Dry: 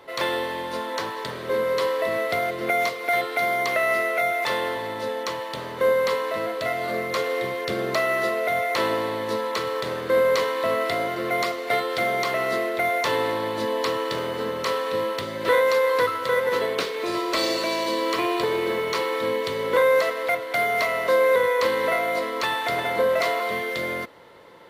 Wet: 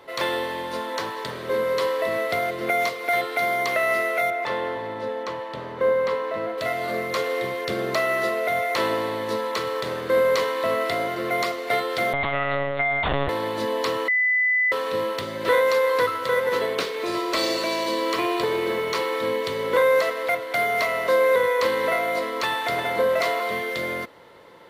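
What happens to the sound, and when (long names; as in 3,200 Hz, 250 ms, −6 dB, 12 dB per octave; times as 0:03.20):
0:04.30–0:06.58: low-pass filter 1,700 Hz 6 dB per octave
0:12.13–0:13.29: one-pitch LPC vocoder at 8 kHz 140 Hz
0:14.08–0:14.72: beep over 2,000 Hz −17.5 dBFS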